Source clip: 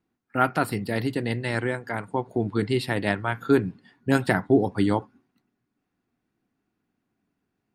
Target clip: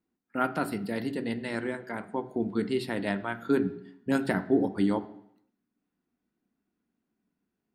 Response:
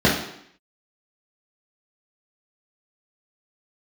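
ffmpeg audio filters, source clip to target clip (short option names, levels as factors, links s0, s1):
-filter_complex "[0:a]asplit=2[s0][s1];[1:a]atrim=start_sample=2205,asetrate=43659,aresample=44100[s2];[s1][s2]afir=irnorm=-1:irlink=0,volume=0.0299[s3];[s0][s3]amix=inputs=2:normalize=0,volume=0.447"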